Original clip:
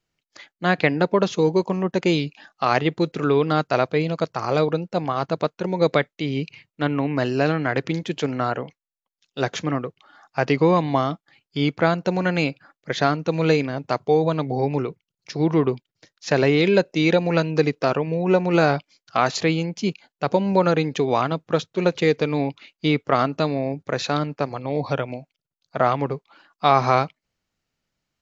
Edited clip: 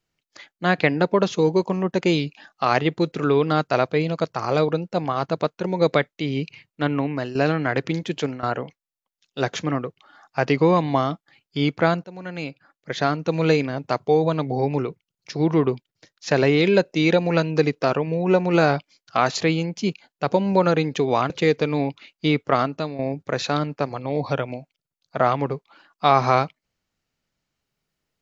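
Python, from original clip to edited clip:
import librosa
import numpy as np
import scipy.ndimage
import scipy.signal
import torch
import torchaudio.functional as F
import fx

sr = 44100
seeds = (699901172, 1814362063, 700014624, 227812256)

y = fx.edit(x, sr, fx.fade_out_to(start_s=6.99, length_s=0.36, floor_db=-10.5),
    fx.fade_out_to(start_s=8.17, length_s=0.26, curve='qsin', floor_db=-18.0),
    fx.fade_in_from(start_s=12.04, length_s=1.28, floor_db=-20.5),
    fx.cut(start_s=21.3, length_s=0.6),
    fx.fade_out_to(start_s=23.13, length_s=0.46, floor_db=-10.5), tone=tone)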